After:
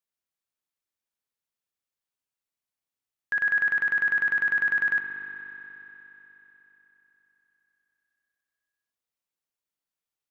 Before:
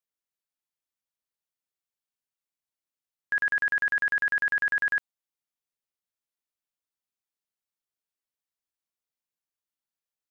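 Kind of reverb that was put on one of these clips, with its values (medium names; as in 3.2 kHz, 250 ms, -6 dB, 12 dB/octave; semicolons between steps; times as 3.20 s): spring tank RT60 3.9 s, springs 60 ms, chirp 75 ms, DRR 4.5 dB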